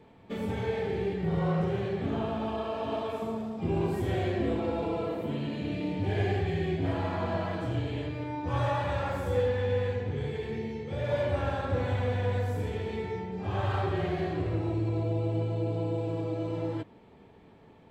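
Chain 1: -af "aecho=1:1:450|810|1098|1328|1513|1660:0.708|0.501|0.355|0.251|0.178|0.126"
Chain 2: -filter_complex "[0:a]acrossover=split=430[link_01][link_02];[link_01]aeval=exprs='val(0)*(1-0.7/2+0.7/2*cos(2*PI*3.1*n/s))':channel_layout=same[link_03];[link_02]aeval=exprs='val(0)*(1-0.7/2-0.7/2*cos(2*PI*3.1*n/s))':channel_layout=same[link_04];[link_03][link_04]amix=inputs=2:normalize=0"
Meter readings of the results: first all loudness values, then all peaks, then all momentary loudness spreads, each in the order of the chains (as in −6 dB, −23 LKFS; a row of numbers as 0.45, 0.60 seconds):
−29.0, −34.5 LKFS; −13.0, −19.0 dBFS; 4, 6 LU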